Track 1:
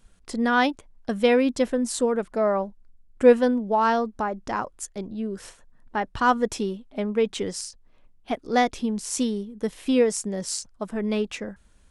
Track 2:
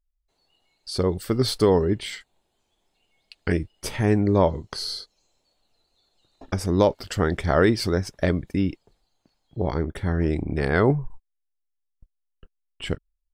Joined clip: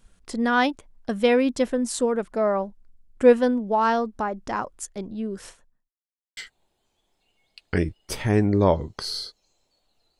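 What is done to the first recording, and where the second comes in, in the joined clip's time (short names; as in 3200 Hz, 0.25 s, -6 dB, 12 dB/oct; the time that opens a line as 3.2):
track 1
5.5–5.92 fade out quadratic
5.92–6.37 mute
6.37 switch to track 2 from 2.11 s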